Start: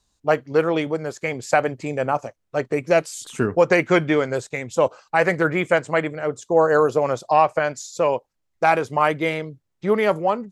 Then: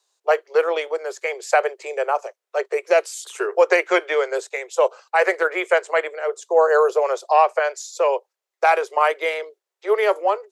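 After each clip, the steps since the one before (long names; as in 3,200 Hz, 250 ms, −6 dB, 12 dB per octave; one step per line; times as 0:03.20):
Butterworth high-pass 370 Hz 96 dB per octave
level +1 dB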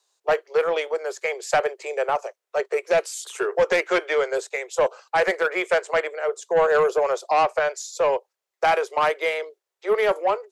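soft clipping −13 dBFS, distortion −13 dB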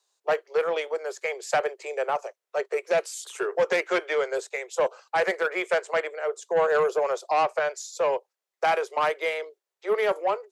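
high-pass filter 120 Hz 24 dB per octave
level −3.5 dB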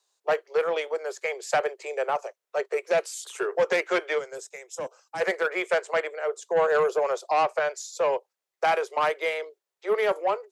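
gain on a spectral selection 0:04.19–0:05.21, 340–4,900 Hz −10 dB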